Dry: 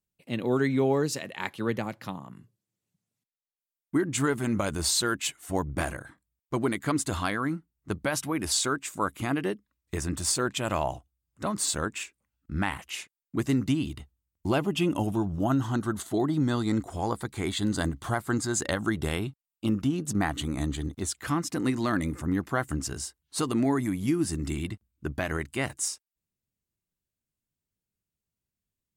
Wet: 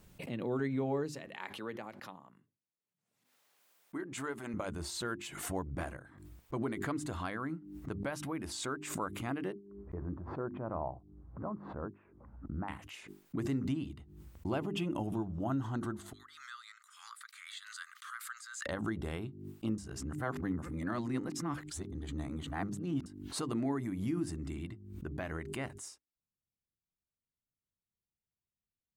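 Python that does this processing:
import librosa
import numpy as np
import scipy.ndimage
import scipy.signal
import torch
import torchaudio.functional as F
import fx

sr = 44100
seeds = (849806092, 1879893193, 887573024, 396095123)

y = fx.highpass(x, sr, hz=530.0, slope=6, at=(1.26, 4.54))
y = fx.lowpass(y, sr, hz=1200.0, slope=24, at=(9.52, 12.68))
y = fx.cheby1_highpass(y, sr, hz=1200.0, order=6, at=(16.13, 18.66))
y = fx.edit(y, sr, fx.reverse_span(start_s=19.78, length_s=3.28), tone=tone)
y = fx.high_shelf(y, sr, hz=2900.0, db=-10.5)
y = fx.hum_notches(y, sr, base_hz=50, count=8)
y = fx.pre_swell(y, sr, db_per_s=56.0)
y = y * 10.0 ** (-8.5 / 20.0)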